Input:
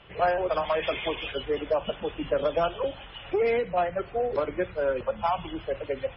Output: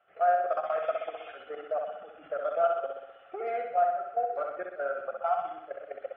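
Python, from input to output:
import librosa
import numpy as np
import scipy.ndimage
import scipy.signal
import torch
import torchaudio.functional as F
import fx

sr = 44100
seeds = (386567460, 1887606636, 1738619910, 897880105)

y = fx.level_steps(x, sr, step_db=13)
y = fx.double_bandpass(y, sr, hz=970.0, octaves=0.9)
y = fx.room_flutter(y, sr, wall_m=10.9, rt60_s=0.84)
y = y * librosa.db_to_amplitude(4.5)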